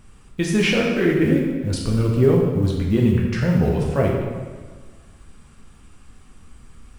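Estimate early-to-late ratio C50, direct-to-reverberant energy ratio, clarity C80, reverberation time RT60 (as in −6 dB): 1.5 dB, −2.0 dB, 3.5 dB, 1.5 s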